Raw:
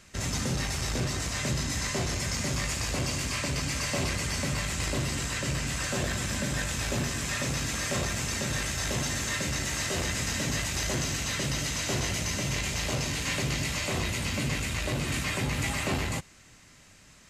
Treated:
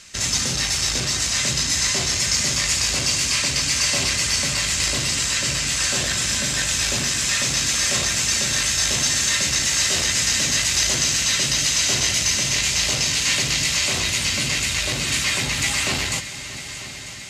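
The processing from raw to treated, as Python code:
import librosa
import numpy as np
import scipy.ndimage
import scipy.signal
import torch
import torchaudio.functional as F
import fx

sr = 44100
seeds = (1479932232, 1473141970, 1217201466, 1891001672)

p1 = fx.peak_eq(x, sr, hz=5200.0, db=14.5, octaves=3.0)
y = p1 + fx.echo_heads(p1, sr, ms=315, heads='second and third', feedback_pct=68, wet_db=-16.0, dry=0)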